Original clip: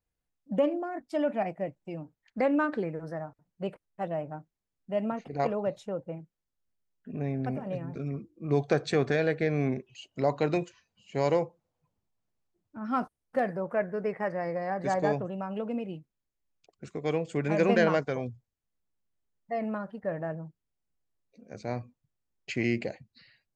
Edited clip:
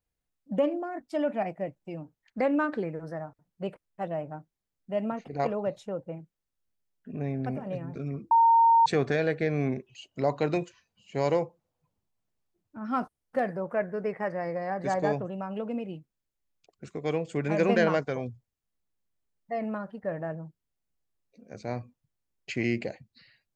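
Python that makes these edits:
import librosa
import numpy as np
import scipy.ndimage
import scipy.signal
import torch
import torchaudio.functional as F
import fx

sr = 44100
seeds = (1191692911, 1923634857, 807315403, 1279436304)

y = fx.edit(x, sr, fx.bleep(start_s=8.31, length_s=0.55, hz=919.0, db=-16.0), tone=tone)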